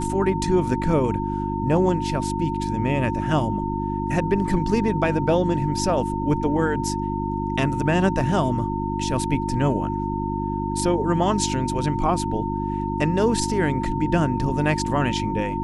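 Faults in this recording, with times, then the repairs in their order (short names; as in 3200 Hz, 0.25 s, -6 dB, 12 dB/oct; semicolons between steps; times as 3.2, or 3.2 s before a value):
hum 50 Hz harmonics 7 -27 dBFS
tone 910 Hz -28 dBFS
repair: notch 910 Hz, Q 30; de-hum 50 Hz, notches 7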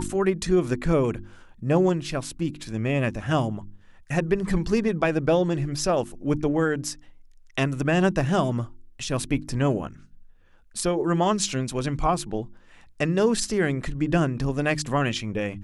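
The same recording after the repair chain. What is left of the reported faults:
none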